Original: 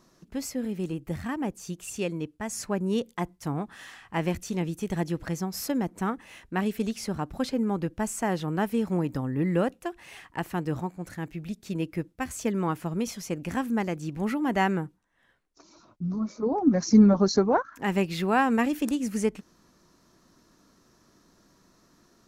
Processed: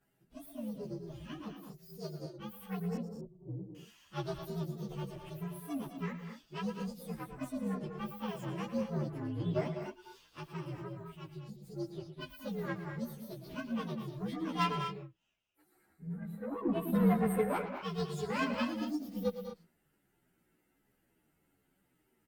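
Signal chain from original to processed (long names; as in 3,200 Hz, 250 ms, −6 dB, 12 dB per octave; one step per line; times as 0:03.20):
partials spread apart or drawn together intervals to 125%
0:02.96–0:03.75: Butterworth low-pass 500 Hz 36 dB per octave
harmonic generator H 7 −24 dB, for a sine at −9.5 dBFS
multi-tap delay 109/115/200/236 ms −14/−14.5/−9.5/−10.5 dB
barber-pole flanger 11.7 ms −1.2 Hz
level −2.5 dB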